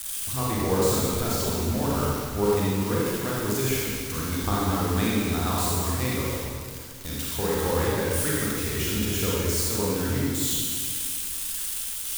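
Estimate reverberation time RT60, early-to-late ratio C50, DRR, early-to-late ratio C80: 2.1 s, -3.5 dB, -6.0 dB, -1.0 dB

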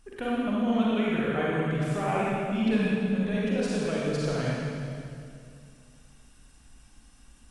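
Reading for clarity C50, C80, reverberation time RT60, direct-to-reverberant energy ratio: -4.5 dB, -2.0 dB, 2.3 s, -6.5 dB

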